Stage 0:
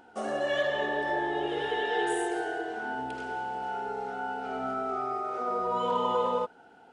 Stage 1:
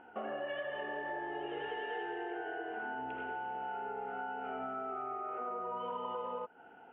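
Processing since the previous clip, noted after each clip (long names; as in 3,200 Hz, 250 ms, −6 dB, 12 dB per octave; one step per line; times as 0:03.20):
elliptic low-pass filter 2,900 Hz, stop band 40 dB
low-shelf EQ 210 Hz −4.5 dB
downward compressor, threshold −37 dBFS, peak gain reduction 12.5 dB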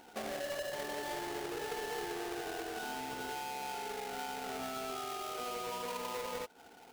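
each half-wave held at its own peak
level −4 dB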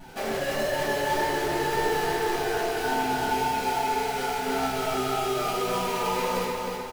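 pitch vibrato 1.8 Hz 36 cents
repeating echo 306 ms, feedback 49%, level −4 dB
convolution reverb RT60 0.50 s, pre-delay 5 ms, DRR −8 dB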